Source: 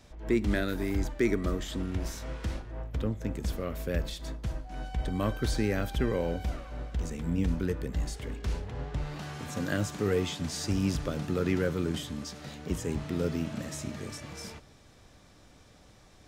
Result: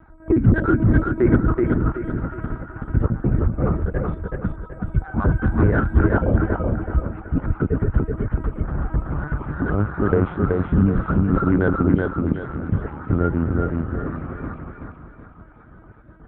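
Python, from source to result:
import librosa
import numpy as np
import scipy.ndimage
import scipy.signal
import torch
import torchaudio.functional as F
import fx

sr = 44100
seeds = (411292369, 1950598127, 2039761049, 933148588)

p1 = fx.spec_dropout(x, sr, seeds[0], share_pct=27)
p2 = fx.lowpass_res(p1, sr, hz=1400.0, q=6.6)
p3 = 10.0 ** (-21.5 / 20.0) * np.tanh(p2 / 10.0 ** (-21.5 / 20.0))
p4 = p2 + (p3 * 10.0 ** (-3.0 / 20.0))
p5 = fx.tilt_eq(p4, sr, slope=-3.5)
p6 = fx.lpc_vocoder(p5, sr, seeds[1], excitation='pitch_kept', order=10)
p7 = scipy.signal.sosfilt(scipy.signal.butter(2, 41.0, 'highpass', fs=sr, output='sos'), p6)
p8 = p7 + fx.echo_feedback(p7, sr, ms=377, feedback_pct=37, wet_db=-3.0, dry=0)
y = p8 * 10.0 ** (-1.0 / 20.0)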